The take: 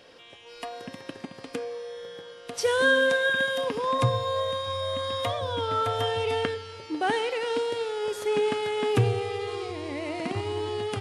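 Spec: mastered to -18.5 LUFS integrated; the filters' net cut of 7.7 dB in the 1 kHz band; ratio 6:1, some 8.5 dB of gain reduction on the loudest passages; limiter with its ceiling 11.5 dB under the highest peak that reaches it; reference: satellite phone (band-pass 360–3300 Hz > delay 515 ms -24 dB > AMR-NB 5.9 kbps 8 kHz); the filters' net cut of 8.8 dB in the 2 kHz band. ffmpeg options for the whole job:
-af "equalizer=f=1000:t=o:g=-7.5,equalizer=f=2000:t=o:g=-8.5,acompressor=threshold=0.0447:ratio=6,alimiter=level_in=1.68:limit=0.0631:level=0:latency=1,volume=0.596,highpass=360,lowpass=3300,aecho=1:1:515:0.0631,volume=11.2" -ar 8000 -c:a libopencore_amrnb -b:a 5900

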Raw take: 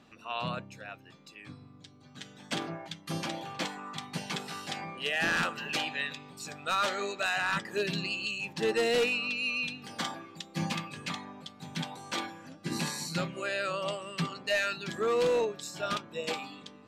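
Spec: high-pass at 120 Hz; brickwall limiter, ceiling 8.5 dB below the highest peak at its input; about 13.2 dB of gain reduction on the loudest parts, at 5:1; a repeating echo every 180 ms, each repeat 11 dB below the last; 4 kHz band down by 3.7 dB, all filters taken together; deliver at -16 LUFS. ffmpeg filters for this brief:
-af "highpass=120,equalizer=f=4000:t=o:g=-5,acompressor=threshold=0.01:ratio=5,alimiter=level_in=3.55:limit=0.0631:level=0:latency=1,volume=0.282,aecho=1:1:180|360|540:0.282|0.0789|0.0221,volume=25.1"

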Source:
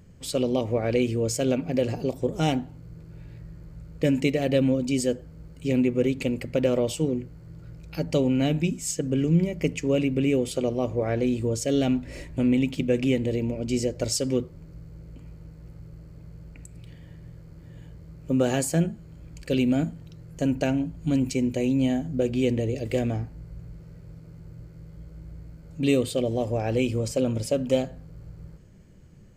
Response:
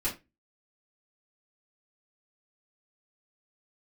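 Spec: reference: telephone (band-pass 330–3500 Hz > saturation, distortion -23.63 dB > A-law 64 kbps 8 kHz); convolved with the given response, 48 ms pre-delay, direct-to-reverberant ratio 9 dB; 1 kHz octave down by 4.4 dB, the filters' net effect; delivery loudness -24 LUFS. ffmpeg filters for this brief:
-filter_complex "[0:a]equalizer=f=1000:t=o:g=-7,asplit=2[s0][s1];[1:a]atrim=start_sample=2205,adelay=48[s2];[s1][s2]afir=irnorm=-1:irlink=0,volume=0.178[s3];[s0][s3]amix=inputs=2:normalize=0,highpass=330,lowpass=3500,asoftclip=threshold=0.168,volume=2.11" -ar 8000 -c:a pcm_alaw

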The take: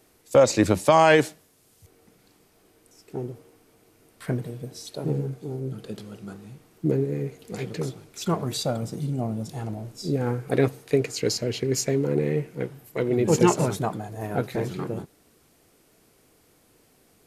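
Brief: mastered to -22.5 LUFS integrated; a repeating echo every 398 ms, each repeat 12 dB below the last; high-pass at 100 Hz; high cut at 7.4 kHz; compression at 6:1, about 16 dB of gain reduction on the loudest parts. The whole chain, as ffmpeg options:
-af "highpass=100,lowpass=7400,acompressor=threshold=0.0316:ratio=6,aecho=1:1:398|796|1194:0.251|0.0628|0.0157,volume=4.47"

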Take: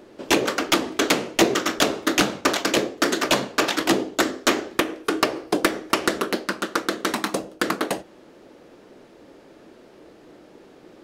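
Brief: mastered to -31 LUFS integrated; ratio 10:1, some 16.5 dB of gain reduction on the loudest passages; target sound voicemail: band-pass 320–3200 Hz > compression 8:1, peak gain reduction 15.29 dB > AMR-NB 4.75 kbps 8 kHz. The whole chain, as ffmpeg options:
-af "acompressor=threshold=0.0251:ratio=10,highpass=320,lowpass=3200,acompressor=threshold=0.00562:ratio=8,volume=16.8" -ar 8000 -c:a libopencore_amrnb -b:a 4750

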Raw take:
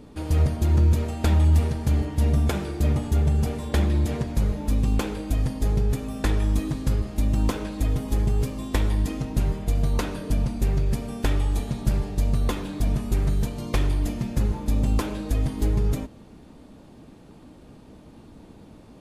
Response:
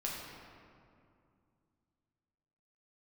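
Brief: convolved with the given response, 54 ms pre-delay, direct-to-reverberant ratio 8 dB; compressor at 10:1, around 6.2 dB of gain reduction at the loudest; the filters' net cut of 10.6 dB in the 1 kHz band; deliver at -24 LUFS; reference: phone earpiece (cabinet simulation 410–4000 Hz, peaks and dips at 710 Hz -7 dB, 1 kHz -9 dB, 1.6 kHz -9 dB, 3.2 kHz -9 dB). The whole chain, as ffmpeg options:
-filter_complex "[0:a]equalizer=f=1000:t=o:g=-4.5,acompressor=threshold=0.0891:ratio=10,asplit=2[s0][s1];[1:a]atrim=start_sample=2205,adelay=54[s2];[s1][s2]afir=irnorm=-1:irlink=0,volume=0.299[s3];[s0][s3]amix=inputs=2:normalize=0,highpass=410,equalizer=f=710:t=q:w=4:g=-7,equalizer=f=1000:t=q:w=4:g=-9,equalizer=f=1600:t=q:w=4:g=-9,equalizer=f=3200:t=q:w=4:g=-9,lowpass=f=4000:w=0.5412,lowpass=f=4000:w=1.3066,volume=7.08"

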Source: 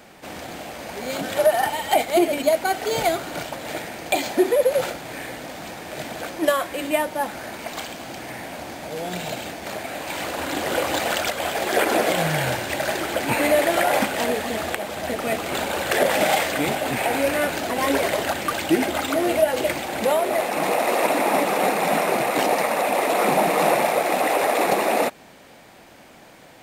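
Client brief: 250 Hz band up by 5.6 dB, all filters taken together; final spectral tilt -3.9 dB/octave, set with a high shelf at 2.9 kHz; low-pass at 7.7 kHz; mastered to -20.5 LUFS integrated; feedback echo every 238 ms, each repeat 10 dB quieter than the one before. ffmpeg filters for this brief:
-af "lowpass=7700,equalizer=f=250:t=o:g=7.5,highshelf=f=2900:g=-5.5,aecho=1:1:238|476|714|952:0.316|0.101|0.0324|0.0104,volume=1.06"

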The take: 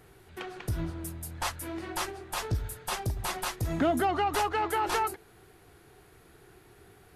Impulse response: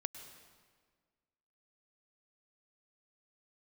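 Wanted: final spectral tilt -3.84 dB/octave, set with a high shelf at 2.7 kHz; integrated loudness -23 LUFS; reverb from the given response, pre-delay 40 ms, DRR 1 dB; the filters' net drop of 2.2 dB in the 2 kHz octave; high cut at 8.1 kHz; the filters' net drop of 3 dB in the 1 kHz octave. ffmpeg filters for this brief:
-filter_complex "[0:a]lowpass=8100,equalizer=f=1000:t=o:g=-4,equalizer=f=2000:t=o:g=-4.5,highshelf=f=2700:g=7,asplit=2[s0][s1];[1:a]atrim=start_sample=2205,adelay=40[s2];[s1][s2]afir=irnorm=-1:irlink=0,volume=1.06[s3];[s0][s3]amix=inputs=2:normalize=0,volume=2.24"

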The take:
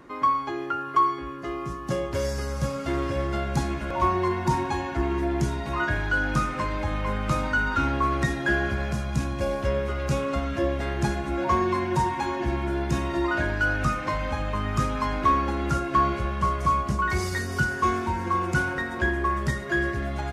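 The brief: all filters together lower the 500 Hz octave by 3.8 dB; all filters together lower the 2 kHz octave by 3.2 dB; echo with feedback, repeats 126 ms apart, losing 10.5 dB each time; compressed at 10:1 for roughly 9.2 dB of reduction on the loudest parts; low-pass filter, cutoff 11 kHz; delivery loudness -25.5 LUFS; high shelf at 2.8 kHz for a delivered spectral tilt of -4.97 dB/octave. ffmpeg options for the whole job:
-af "lowpass=11000,equalizer=f=500:t=o:g=-5.5,equalizer=f=2000:t=o:g=-7,highshelf=f=2800:g=7,acompressor=threshold=0.0398:ratio=10,aecho=1:1:126|252|378:0.299|0.0896|0.0269,volume=2.37"

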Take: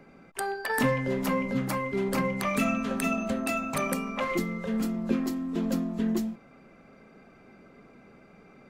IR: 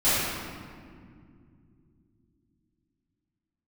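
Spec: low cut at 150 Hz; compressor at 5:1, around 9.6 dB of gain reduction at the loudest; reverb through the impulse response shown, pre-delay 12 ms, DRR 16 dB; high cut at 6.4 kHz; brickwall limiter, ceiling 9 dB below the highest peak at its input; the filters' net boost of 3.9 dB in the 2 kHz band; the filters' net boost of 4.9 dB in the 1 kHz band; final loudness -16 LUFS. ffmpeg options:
-filter_complex "[0:a]highpass=150,lowpass=6400,equalizer=f=1000:t=o:g=5,equalizer=f=2000:t=o:g=3.5,acompressor=threshold=0.0282:ratio=5,alimiter=level_in=1.5:limit=0.0631:level=0:latency=1,volume=0.668,asplit=2[s0][s1];[1:a]atrim=start_sample=2205,adelay=12[s2];[s1][s2]afir=irnorm=-1:irlink=0,volume=0.0237[s3];[s0][s3]amix=inputs=2:normalize=0,volume=9.44"

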